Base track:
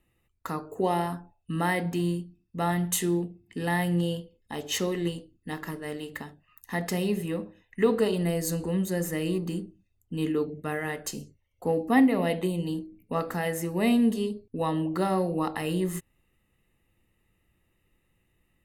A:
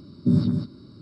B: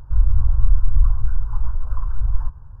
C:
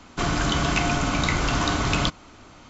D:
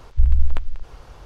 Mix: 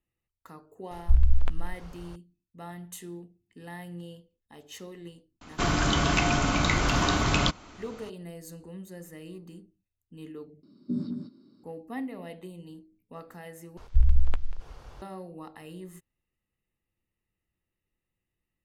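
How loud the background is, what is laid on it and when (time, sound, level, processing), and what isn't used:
base track −15 dB
0:00.91: mix in D −4.5 dB
0:05.41: mix in C −1.5 dB
0:10.63: overwrite with A −14.5 dB + high-pass with resonance 240 Hz, resonance Q 2.1
0:13.77: overwrite with D −4.5 dB
not used: B

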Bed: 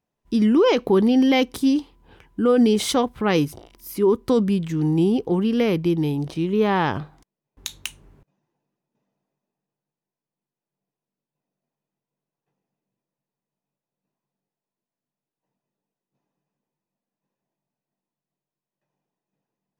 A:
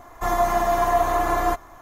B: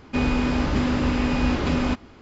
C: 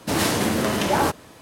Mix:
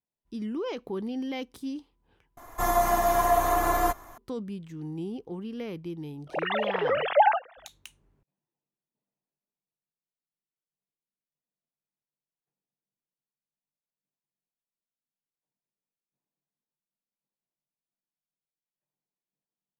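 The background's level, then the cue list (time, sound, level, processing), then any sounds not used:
bed −16 dB
0:02.37: overwrite with A −3 dB + parametric band 12,000 Hz +9.5 dB 1.1 octaves
0:06.27: mix in C −3 dB + three sine waves on the formant tracks
not used: B

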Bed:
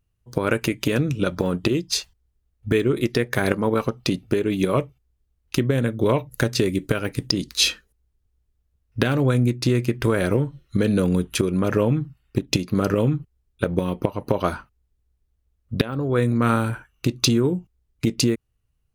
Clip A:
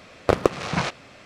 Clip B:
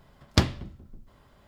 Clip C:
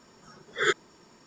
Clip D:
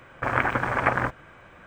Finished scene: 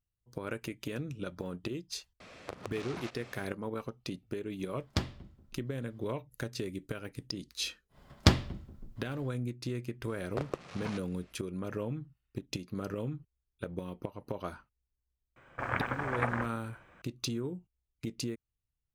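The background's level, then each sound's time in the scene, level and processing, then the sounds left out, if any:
bed −16.5 dB
0:02.20: mix in A −5 dB + downward compressor 3 to 1, threshold −39 dBFS
0:04.59: mix in B −10.5 dB
0:07.89: mix in B −1 dB, fades 0.10 s
0:10.08: mix in A −18 dB
0:15.36: mix in D −10 dB
not used: C

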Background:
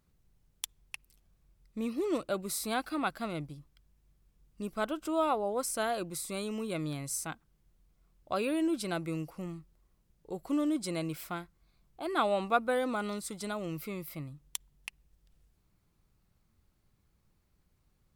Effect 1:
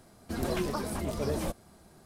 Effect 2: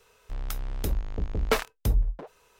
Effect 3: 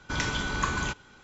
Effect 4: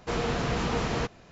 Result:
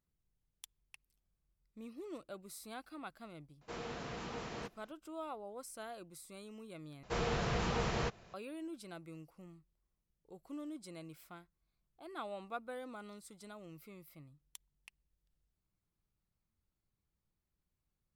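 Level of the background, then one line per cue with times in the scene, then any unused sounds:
background −15 dB
0:03.61: mix in 4 −14 dB + low-shelf EQ 110 Hz −10 dB
0:07.03: overwrite with 4 −6 dB + parametric band 270 Hz −12.5 dB 0.22 octaves
not used: 1, 2, 3

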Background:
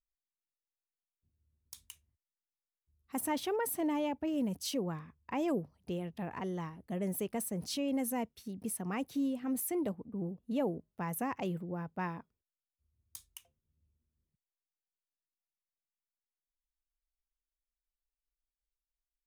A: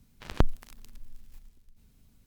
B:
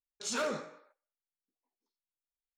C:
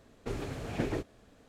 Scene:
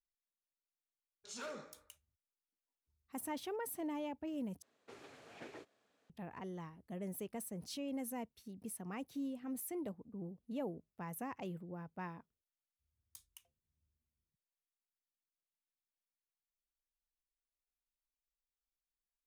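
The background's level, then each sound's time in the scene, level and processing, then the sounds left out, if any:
background −8 dB
0:01.04: mix in B −12.5 dB
0:04.62: overwrite with C −13.5 dB + meter weighting curve A
not used: A

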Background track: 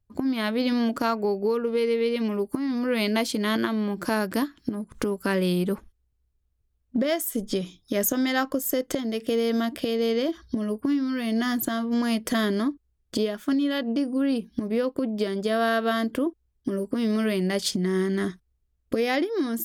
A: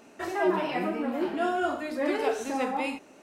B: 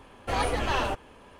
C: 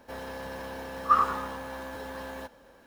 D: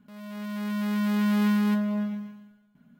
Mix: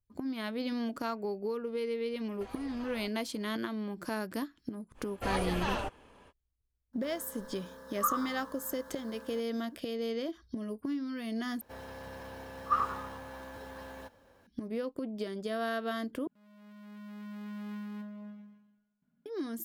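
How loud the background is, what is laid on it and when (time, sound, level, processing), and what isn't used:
background track −10.5 dB
0:02.13: mix in B −14.5 dB + downward compressor, threshold −31 dBFS
0:04.94: mix in B −6.5 dB, fades 0.05 s
0:06.93: mix in C −9 dB + phaser with its sweep stopped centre 500 Hz, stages 8
0:11.61: overwrite with C −7 dB + parametric band 97 Hz +9 dB 0.6 octaves
0:16.27: overwrite with D −18 dB + high-shelf EQ 4,000 Hz −5.5 dB
not used: A

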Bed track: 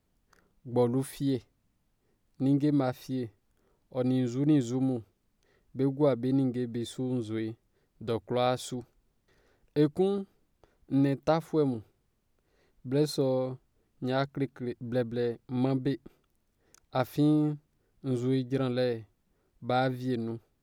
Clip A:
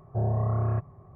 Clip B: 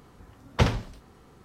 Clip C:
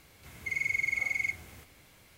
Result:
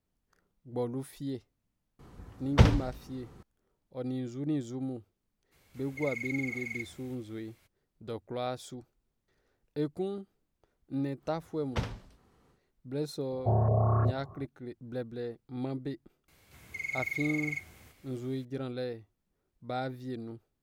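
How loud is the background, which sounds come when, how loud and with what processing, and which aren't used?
bed track −7.5 dB
0:01.99: mix in B −3 dB + low-shelf EQ 340 Hz +6 dB
0:05.51: mix in C −7.5 dB, fades 0.02 s
0:11.17: mix in B −11.5 dB, fades 0.10 s
0:13.31: mix in A −0.5 dB + auto-filter low-pass saw up 2.7 Hz 510–1,600 Hz
0:16.28: mix in C −5 dB

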